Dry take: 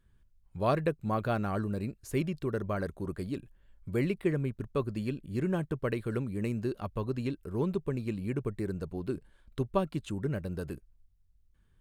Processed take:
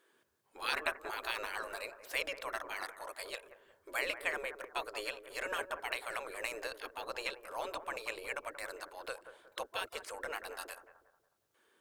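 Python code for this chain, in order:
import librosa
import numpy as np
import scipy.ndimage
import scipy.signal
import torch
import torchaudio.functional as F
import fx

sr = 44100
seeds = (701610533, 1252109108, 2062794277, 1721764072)

y = fx.spec_gate(x, sr, threshold_db=-20, keep='weak')
y = fx.low_shelf_res(y, sr, hz=290.0, db=-11.5, q=1.5)
y = fx.echo_bbd(y, sr, ms=182, stages=2048, feedback_pct=38, wet_db=-11.0)
y = y * 10.0 ** (9.0 / 20.0)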